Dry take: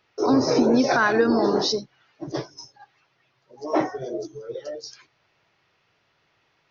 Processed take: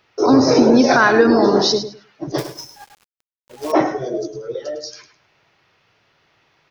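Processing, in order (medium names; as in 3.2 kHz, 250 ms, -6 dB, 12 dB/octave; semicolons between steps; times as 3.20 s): on a send: feedback delay 105 ms, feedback 20%, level -11 dB; 2.38–3.72 s: on the sum: companded quantiser 4-bit; trim +6.5 dB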